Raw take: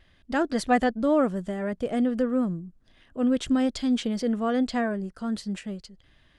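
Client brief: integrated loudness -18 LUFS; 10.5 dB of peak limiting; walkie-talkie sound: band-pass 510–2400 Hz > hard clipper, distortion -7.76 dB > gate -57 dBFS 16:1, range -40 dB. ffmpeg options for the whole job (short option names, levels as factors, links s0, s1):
-af "alimiter=limit=0.119:level=0:latency=1,highpass=510,lowpass=2400,asoftclip=type=hard:threshold=0.0237,agate=range=0.01:threshold=0.00141:ratio=16,volume=10.6"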